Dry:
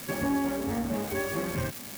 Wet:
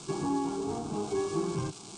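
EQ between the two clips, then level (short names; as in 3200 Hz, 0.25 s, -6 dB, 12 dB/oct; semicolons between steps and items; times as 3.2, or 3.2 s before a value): steep low-pass 8900 Hz 72 dB/oct; bell 340 Hz +5 dB 0.88 oct; fixed phaser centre 370 Hz, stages 8; 0.0 dB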